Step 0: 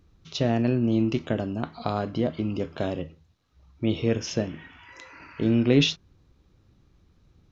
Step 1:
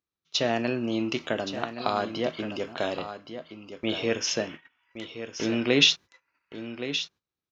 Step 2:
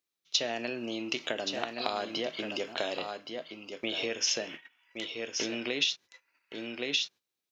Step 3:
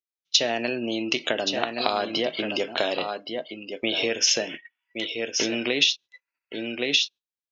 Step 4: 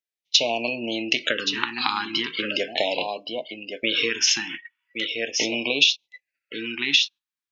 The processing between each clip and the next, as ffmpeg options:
ffmpeg -i in.wav -filter_complex "[0:a]highpass=frequency=1000:poles=1,agate=range=-26dB:threshold=-45dB:ratio=16:detection=peak,asplit=2[link_01][link_02];[link_02]aecho=0:1:1121:0.299[link_03];[link_01][link_03]amix=inputs=2:normalize=0,volume=6.5dB" out.wav
ffmpeg -i in.wav -af "equalizer=frequency=1200:width_type=o:width=1.1:gain=-7.5,acompressor=threshold=-30dB:ratio=10,highpass=frequency=730:poles=1,volume=6dB" out.wav
ffmpeg -i in.wav -af "afftdn=noise_reduction=22:noise_floor=-48,volume=8dB" out.wav
ffmpeg -i in.wav -af "equalizer=frequency=1700:width_type=o:width=2.9:gain=7,bandreject=frequency=380:width=12,afftfilt=real='re*(1-between(b*sr/1024,530*pow(1600/530,0.5+0.5*sin(2*PI*0.39*pts/sr))/1.41,530*pow(1600/530,0.5+0.5*sin(2*PI*0.39*pts/sr))*1.41))':imag='im*(1-between(b*sr/1024,530*pow(1600/530,0.5+0.5*sin(2*PI*0.39*pts/sr))/1.41,530*pow(1600/530,0.5+0.5*sin(2*PI*0.39*pts/sr))*1.41))':win_size=1024:overlap=0.75,volume=-2dB" out.wav

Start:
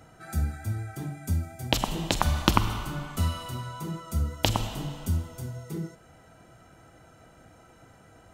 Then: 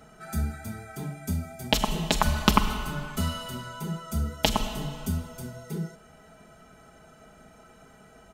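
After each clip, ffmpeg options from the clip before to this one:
ffmpeg -i in.wav -af "aecho=1:1:4.7:0.75" out.wav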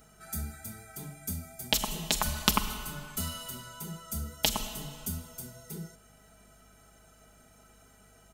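ffmpeg -i in.wav -af "crystalizer=i=3:c=0,aeval=exprs='1.41*(cos(1*acos(clip(val(0)/1.41,-1,1)))-cos(1*PI/2))+0.178*(cos(3*acos(clip(val(0)/1.41,-1,1)))-cos(3*PI/2))':channel_layout=same,aeval=exprs='val(0)+0.00141*(sin(2*PI*50*n/s)+sin(2*PI*2*50*n/s)/2+sin(2*PI*3*50*n/s)/3+sin(2*PI*4*50*n/s)/4+sin(2*PI*5*50*n/s)/5)':channel_layout=same,volume=-5dB" out.wav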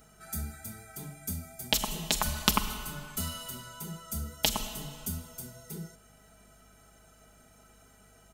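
ffmpeg -i in.wav -af anull out.wav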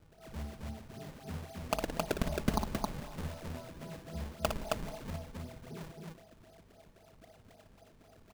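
ffmpeg -i in.wav -filter_complex "[0:a]lowpass=frequency=690:width_type=q:width=3.4,acrusher=samples=38:mix=1:aa=0.000001:lfo=1:lforange=60.8:lforate=3.8,asplit=2[link_01][link_02];[link_02]aecho=0:1:58.31|268.2:0.447|0.794[link_03];[link_01][link_03]amix=inputs=2:normalize=0,volume=-5.5dB" out.wav

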